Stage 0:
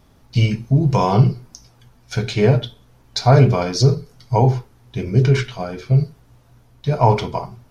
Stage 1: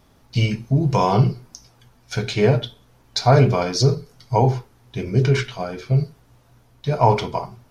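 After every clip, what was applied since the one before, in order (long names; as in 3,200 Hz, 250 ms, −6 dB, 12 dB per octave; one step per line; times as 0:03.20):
low-shelf EQ 220 Hz −4.5 dB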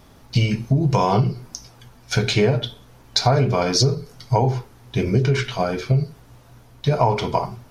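downward compressor 6 to 1, threshold −21 dBFS, peak gain reduction 11.5 dB
level +6.5 dB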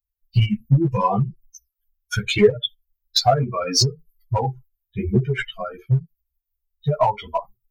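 spectral dynamics exaggerated over time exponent 3
in parallel at −7 dB: gain into a clipping stage and back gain 20 dB
on the sum: string-ensemble chorus
level +6 dB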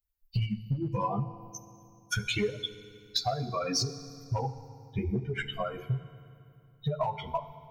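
downward compressor 5 to 1, threshold −29 dBFS, peak gain reduction 18.5 dB
feedback delay network reverb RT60 2.5 s, low-frequency decay 1.4×, high-frequency decay 0.85×, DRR 12.5 dB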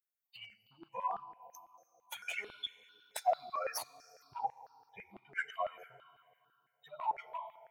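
stylus tracing distortion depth 0.062 ms
auto-filter high-pass saw down 6 Hz 560–1,800 Hz
step-sequenced phaser 4.5 Hz 960–2,100 Hz
level −5 dB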